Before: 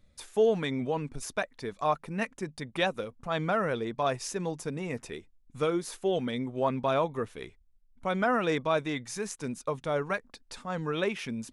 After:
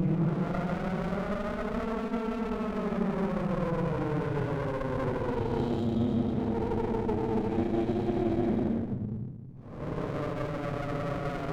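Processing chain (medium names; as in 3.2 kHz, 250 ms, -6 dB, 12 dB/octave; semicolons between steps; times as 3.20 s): Paulstretch 19×, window 0.05 s, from 3.46 s; reverse; compression 6:1, threshold -34 dBFS, peak gain reduction 12 dB; reverse; tilt shelf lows +8.5 dB, about 880 Hz; reverse echo 146 ms -9 dB; on a send at -13.5 dB: reverberation RT60 0.35 s, pre-delay 115 ms; on the sum: sliding maximum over 33 samples; trim +3.5 dB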